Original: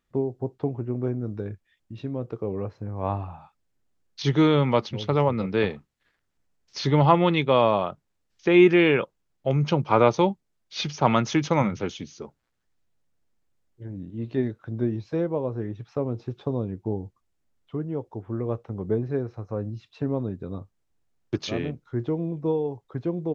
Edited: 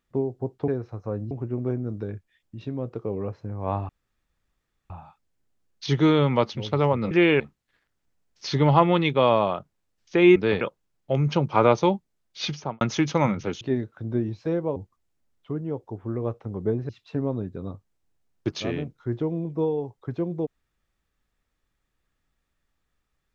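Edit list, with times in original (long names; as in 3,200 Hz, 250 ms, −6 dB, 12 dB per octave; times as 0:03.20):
0:03.26: splice in room tone 1.01 s
0:05.47–0:05.72: swap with 0:08.68–0:08.97
0:10.86–0:11.17: fade out and dull
0:11.97–0:14.28: remove
0:15.43–0:17.00: remove
0:19.13–0:19.76: move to 0:00.68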